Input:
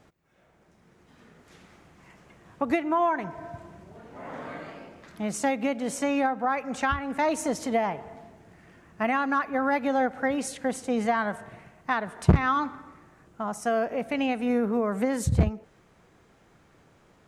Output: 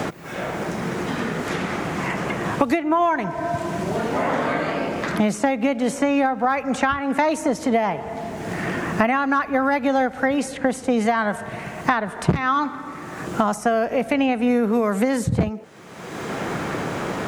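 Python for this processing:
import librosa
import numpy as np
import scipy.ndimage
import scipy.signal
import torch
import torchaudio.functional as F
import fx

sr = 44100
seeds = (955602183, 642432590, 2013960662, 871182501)

y = fx.band_squash(x, sr, depth_pct=100)
y = y * 10.0 ** (6.0 / 20.0)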